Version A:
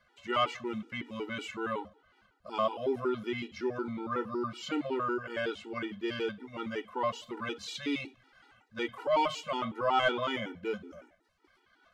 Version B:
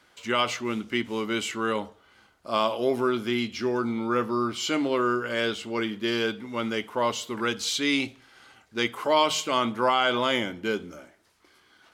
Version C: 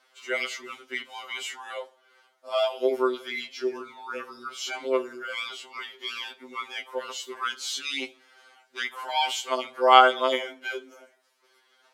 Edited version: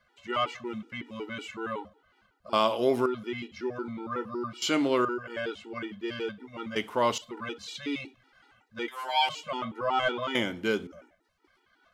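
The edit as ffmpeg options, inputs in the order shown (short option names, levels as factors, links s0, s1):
-filter_complex "[1:a]asplit=4[s0][s1][s2][s3];[0:a]asplit=6[s4][s5][s6][s7][s8][s9];[s4]atrim=end=2.532[s10];[s0]atrim=start=2.528:end=3.062[s11];[s5]atrim=start=3.058:end=4.622[s12];[s1]atrim=start=4.618:end=5.052[s13];[s6]atrim=start=5.048:end=6.762[s14];[s2]atrim=start=6.758:end=7.182[s15];[s7]atrim=start=7.178:end=8.882[s16];[2:a]atrim=start=8.878:end=9.292[s17];[s8]atrim=start=9.288:end=10.352[s18];[s3]atrim=start=10.348:end=10.872[s19];[s9]atrim=start=10.868[s20];[s10][s11]acrossfade=d=0.004:c1=hsin:c2=hsin[s21];[s21][s12]acrossfade=d=0.004:c1=hsin:c2=hsin[s22];[s22][s13]acrossfade=d=0.004:c1=hsin:c2=hsin[s23];[s23][s14]acrossfade=d=0.004:c1=hsin:c2=hsin[s24];[s24][s15]acrossfade=d=0.004:c1=hsin:c2=hsin[s25];[s25][s16]acrossfade=d=0.004:c1=hsin:c2=hsin[s26];[s26][s17]acrossfade=d=0.004:c1=hsin:c2=hsin[s27];[s27][s18]acrossfade=d=0.004:c1=hsin:c2=hsin[s28];[s28][s19]acrossfade=d=0.004:c1=hsin:c2=hsin[s29];[s29][s20]acrossfade=d=0.004:c1=hsin:c2=hsin"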